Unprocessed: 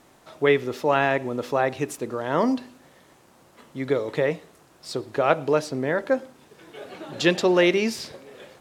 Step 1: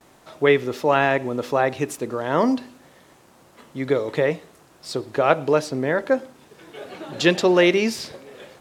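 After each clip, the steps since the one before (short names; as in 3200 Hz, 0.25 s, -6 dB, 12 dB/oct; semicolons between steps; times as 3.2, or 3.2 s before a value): gate with hold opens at -46 dBFS; gain +2.5 dB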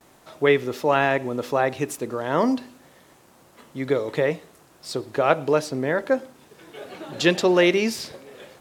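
high shelf 11000 Hz +6 dB; gain -1.5 dB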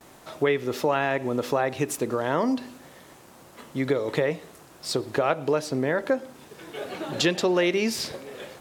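compressor 3:1, threshold -26 dBFS, peak gain reduction 10.5 dB; gain +4 dB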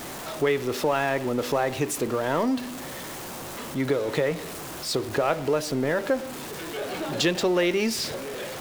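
zero-crossing step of -30.5 dBFS; gain -1.5 dB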